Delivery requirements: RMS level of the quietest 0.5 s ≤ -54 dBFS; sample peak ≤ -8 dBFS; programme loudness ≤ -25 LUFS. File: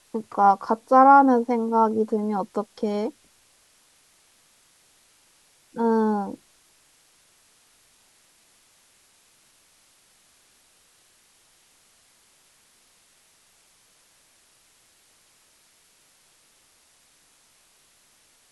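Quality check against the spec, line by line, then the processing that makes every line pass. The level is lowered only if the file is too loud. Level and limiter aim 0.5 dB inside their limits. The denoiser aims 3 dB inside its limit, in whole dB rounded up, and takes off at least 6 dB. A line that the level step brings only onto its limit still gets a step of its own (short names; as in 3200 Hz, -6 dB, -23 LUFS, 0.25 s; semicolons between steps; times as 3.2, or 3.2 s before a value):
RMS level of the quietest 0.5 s -60 dBFS: OK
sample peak -4.0 dBFS: fail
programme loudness -21.0 LUFS: fail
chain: gain -4.5 dB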